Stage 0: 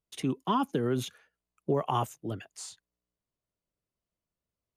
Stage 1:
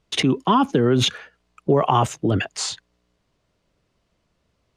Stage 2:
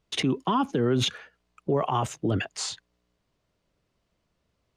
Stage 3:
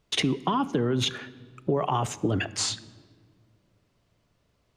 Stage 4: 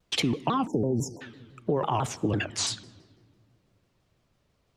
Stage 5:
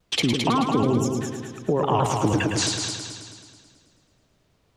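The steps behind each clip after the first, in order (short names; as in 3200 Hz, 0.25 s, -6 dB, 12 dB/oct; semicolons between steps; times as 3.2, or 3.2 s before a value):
LPF 5000 Hz 12 dB/oct; in parallel at +2 dB: negative-ratio compressor -39 dBFS, ratio -1; on the sum: gain +9 dB
limiter -9.5 dBFS, peak gain reduction 6 dB; gain -5.5 dB
compressor, threshold -26 dBFS, peak gain reduction 7 dB; shoebox room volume 2200 m³, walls mixed, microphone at 0.34 m; gain +4.5 dB
spectral delete 0.67–1.21, 940–4800 Hz; shaped vibrato saw down 6 Hz, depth 250 cents; gain -1 dB
multi-head echo 0.108 s, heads first and second, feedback 53%, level -7 dB; gain +3.5 dB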